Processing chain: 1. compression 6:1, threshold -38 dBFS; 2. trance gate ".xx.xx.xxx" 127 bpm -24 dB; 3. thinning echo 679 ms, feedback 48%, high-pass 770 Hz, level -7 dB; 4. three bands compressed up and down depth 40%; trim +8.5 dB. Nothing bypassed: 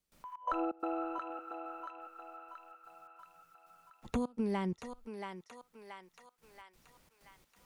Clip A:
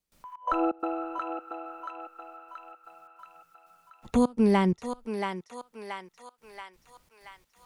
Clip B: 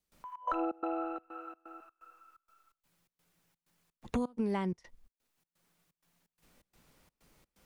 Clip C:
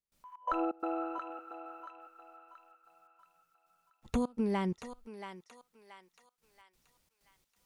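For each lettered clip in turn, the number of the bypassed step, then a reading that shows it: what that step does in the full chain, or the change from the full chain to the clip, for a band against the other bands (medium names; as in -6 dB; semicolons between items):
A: 1, 1 kHz band -2.5 dB; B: 3, momentary loudness spread change -6 LU; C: 4, loudness change +3.0 LU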